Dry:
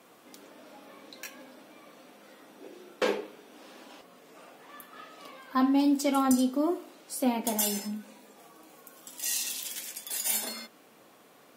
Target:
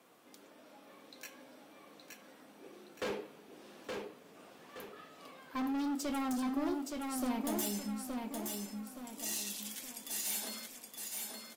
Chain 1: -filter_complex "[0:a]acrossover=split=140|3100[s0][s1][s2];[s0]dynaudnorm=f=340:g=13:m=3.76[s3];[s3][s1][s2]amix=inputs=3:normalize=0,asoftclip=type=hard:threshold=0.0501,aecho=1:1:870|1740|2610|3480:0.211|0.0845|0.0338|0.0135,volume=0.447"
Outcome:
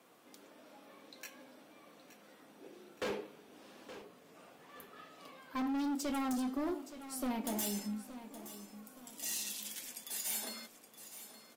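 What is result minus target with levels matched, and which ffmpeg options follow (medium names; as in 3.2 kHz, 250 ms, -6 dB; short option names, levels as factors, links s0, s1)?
echo-to-direct -9 dB
-filter_complex "[0:a]acrossover=split=140|3100[s0][s1][s2];[s0]dynaudnorm=f=340:g=13:m=3.76[s3];[s3][s1][s2]amix=inputs=3:normalize=0,asoftclip=type=hard:threshold=0.0501,aecho=1:1:870|1740|2610|3480|4350:0.631|0.252|0.101|0.0404|0.0162,volume=0.447"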